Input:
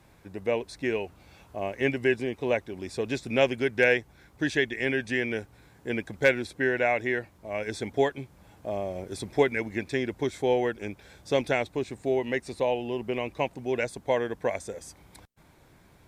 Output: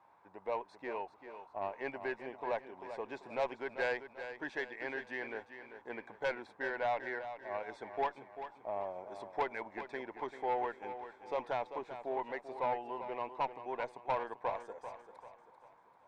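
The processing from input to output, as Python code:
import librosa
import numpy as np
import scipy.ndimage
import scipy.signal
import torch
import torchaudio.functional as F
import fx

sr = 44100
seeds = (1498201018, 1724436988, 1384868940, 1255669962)

p1 = fx.bandpass_q(x, sr, hz=940.0, q=4.0)
p2 = fx.tube_stage(p1, sr, drive_db=31.0, bias=0.2)
p3 = p2 + fx.echo_feedback(p2, sr, ms=391, feedback_pct=40, wet_db=-10.5, dry=0)
y = F.gain(torch.from_numpy(p3), 4.5).numpy()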